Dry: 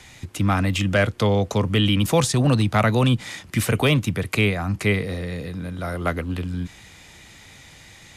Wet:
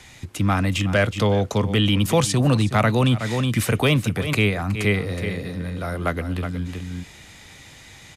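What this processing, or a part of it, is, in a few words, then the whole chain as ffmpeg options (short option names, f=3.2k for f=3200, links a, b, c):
ducked delay: -filter_complex "[0:a]asplit=3[a][b][c];[b]adelay=369,volume=-4dB[d];[c]apad=whole_len=376249[e];[d][e]sidechaincompress=threshold=-29dB:ratio=12:attack=7.2:release=126[f];[a][f]amix=inputs=2:normalize=0"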